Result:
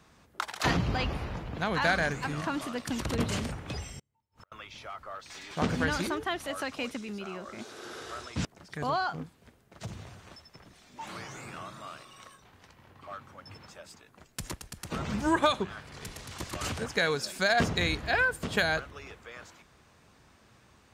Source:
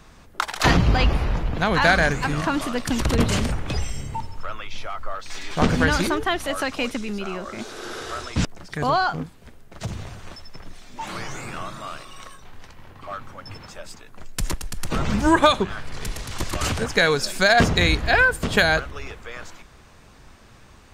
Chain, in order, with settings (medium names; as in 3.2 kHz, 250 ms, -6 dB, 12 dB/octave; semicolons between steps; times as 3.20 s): high-pass 74 Hz 12 dB/octave; 3.99–4.52 s: inverted gate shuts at -29 dBFS, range -39 dB; trim -9 dB